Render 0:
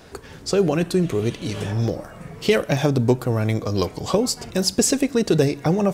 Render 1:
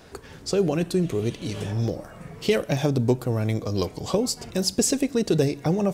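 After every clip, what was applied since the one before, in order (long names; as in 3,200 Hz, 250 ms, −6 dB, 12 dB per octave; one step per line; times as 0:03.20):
dynamic equaliser 1,400 Hz, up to −4 dB, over −38 dBFS, Q 0.9
level −3 dB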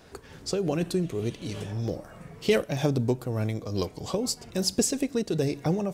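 amplitude modulation by smooth noise, depth 60%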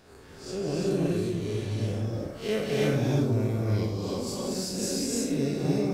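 spectrum smeared in time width 119 ms
reverb whose tail is shaped and stops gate 370 ms rising, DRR −3.5 dB
level −2 dB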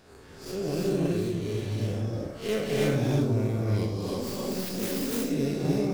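stylus tracing distortion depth 0.26 ms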